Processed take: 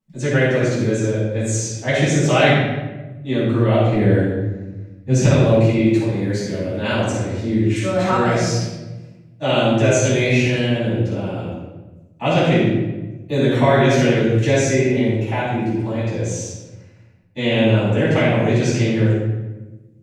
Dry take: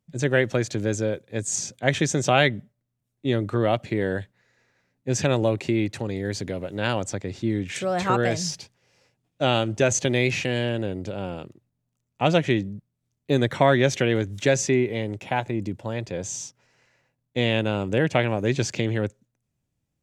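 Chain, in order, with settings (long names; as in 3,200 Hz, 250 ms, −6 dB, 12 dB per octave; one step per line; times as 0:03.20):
0:03.94–0:05.25: low-shelf EQ 250 Hz +10.5 dB
rectangular room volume 630 cubic metres, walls mixed, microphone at 9 metres
level −11 dB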